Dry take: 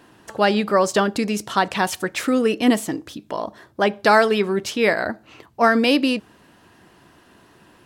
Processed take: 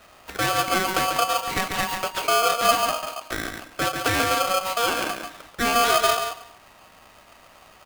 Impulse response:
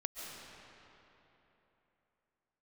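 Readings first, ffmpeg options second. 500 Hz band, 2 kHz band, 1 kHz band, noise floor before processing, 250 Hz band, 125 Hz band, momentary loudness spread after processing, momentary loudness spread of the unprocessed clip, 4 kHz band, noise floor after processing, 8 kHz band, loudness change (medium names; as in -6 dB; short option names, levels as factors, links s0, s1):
-6.0 dB, -2.5 dB, +0.5 dB, -54 dBFS, -13.0 dB, -3.5 dB, 12 LU, 14 LU, +2.0 dB, -52 dBFS, +5.0 dB, -2.5 dB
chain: -filter_complex "[0:a]equalizer=f=5600:w=1.5:g=-5,acrossover=split=270|3000[s0][s1][s2];[s1]acompressor=threshold=0.0398:ratio=2.5[s3];[s0][s3][s2]amix=inputs=3:normalize=0,acrossover=split=290|3600[s4][s5][s6];[s6]aeval=exprs='abs(val(0))':c=same[s7];[s4][s5][s7]amix=inputs=3:normalize=0,asplit=2[s8][s9];[s9]adelay=139.9,volume=0.501,highshelf=f=4000:g=-3.15[s10];[s8][s10]amix=inputs=2:normalize=0,asplit=2[s11][s12];[1:a]atrim=start_sample=2205,afade=t=out:st=0.27:d=0.01,atrim=end_sample=12348,adelay=31[s13];[s12][s13]afir=irnorm=-1:irlink=0,volume=0.335[s14];[s11][s14]amix=inputs=2:normalize=0,aeval=exprs='val(0)*sgn(sin(2*PI*940*n/s))':c=same"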